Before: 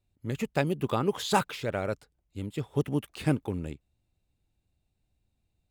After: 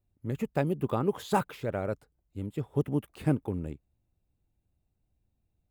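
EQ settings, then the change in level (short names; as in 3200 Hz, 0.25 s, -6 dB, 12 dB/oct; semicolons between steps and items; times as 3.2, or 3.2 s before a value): bell 4600 Hz -11 dB 2.7 oct; 0.0 dB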